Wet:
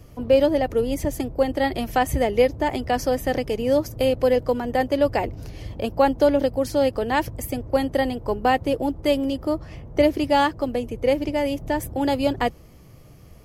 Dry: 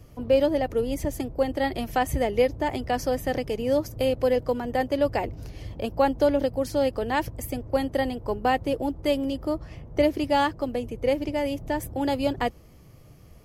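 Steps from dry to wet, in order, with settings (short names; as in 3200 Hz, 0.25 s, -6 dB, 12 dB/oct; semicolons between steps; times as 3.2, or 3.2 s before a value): de-hum 51.34 Hz, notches 3; gain +3.5 dB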